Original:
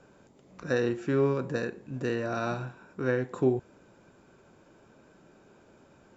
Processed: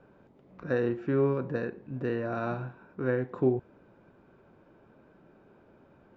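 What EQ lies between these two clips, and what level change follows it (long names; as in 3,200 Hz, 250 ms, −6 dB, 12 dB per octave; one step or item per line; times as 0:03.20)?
high-frequency loss of the air 200 metres
high-shelf EQ 3,800 Hz −9.5 dB
0.0 dB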